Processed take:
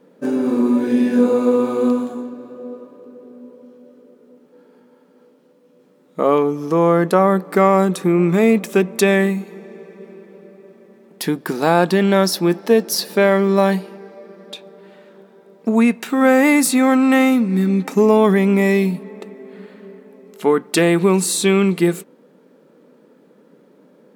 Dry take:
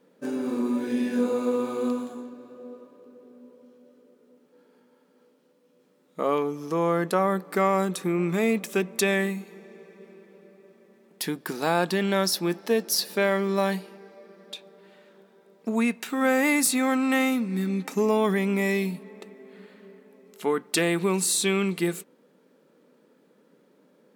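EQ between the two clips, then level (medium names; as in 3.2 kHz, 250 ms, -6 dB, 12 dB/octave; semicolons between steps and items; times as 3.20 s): tilt shelf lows +3.5 dB, about 1.5 kHz; +7.0 dB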